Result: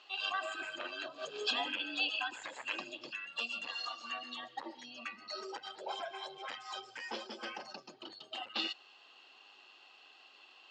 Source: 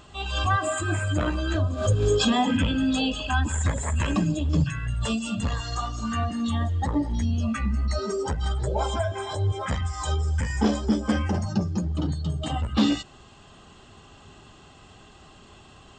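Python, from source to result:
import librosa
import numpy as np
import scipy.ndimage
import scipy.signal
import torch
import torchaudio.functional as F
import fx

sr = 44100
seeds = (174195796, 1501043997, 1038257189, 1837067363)

y = fx.stretch_grains(x, sr, factor=0.67, grain_ms=20.0)
y = fx.cabinet(y, sr, low_hz=420.0, low_slope=24, high_hz=5500.0, hz=(430.0, 620.0, 1100.0, 2700.0, 4400.0), db=(-7, -5, -3, 10, 8))
y = y * librosa.db_to_amplitude(-8.5)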